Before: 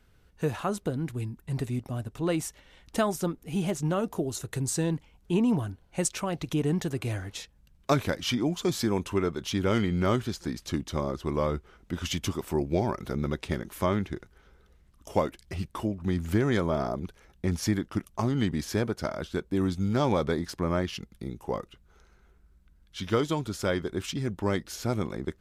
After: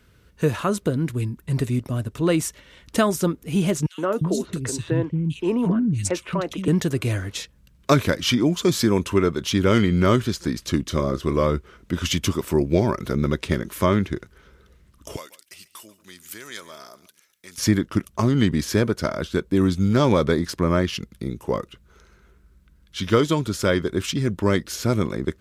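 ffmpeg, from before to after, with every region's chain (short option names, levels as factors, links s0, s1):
-filter_complex "[0:a]asettb=1/sr,asplit=3[s0][s1][s2];[s0]atrim=end=3.864[s3];[s1]atrim=start=3.86:end=6.68,asetpts=PTS-STARTPTS,afade=t=in:d=0.004:c=qsin,afade=t=out:st=2.816:d=0.004:c=qsin,lowpass=f=3700:p=1,acrossover=split=250|2700[s4][s5][s6];[s5]adelay=120[s7];[s4]adelay=350[s8];[s8][s7][s6]amix=inputs=3:normalize=0,atrim=end_sample=124362[s9];[s2]atrim=start=6.676[s10];[s3][s9]acrossfade=d=0.004:c1=hsin:c2=qsin[s11];[s11][s10]acrossfade=d=0.004:c1=qsin:c2=hsin,asettb=1/sr,asplit=3[s12][s13][s14];[s12]atrim=end=10.854[s15];[s13]atrim=start=10.85:end=11.44,asetpts=PTS-STARTPTS,afade=t=in:d=0.004:c=qsin,afade=t=out:st=0.586:d=0.004:c=qsin,bandreject=f=900:w=7.7,asplit=2[s16][s17];[s17]adelay=30,volume=0.224[s18];[s16][s18]amix=inputs=2:normalize=0,atrim=end_sample=26019[s19];[s14]atrim=start=11.436[s20];[s15][s19]acrossfade=d=0.004:c1=hsin:c2=qsin[s21];[s21][s20]acrossfade=d=0.004:c1=qsin:c2=hsin,asettb=1/sr,asplit=3[s22][s23][s24];[s22]atrim=end=15.164[s25];[s23]atrim=start=15.16:end=17.58,asetpts=PTS-STARTPTS,afade=t=in:d=0.004:c=qsin,afade=t=out:st=2.416:d=0.004:c=qsin,aderivative,aecho=1:1:140:0.126,atrim=end_sample=106722[s26];[s24]atrim=start=17.576[s27];[s25][s26]acrossfade=d=0.004:c1=hsin:c2=qsin[s28];[s28][s27]acrossfade=d=0.004:c1=qsin:c2=hsin,highpass=50,equalizer=f=780:t=o:w=0.25:g=-12,volume=2.51"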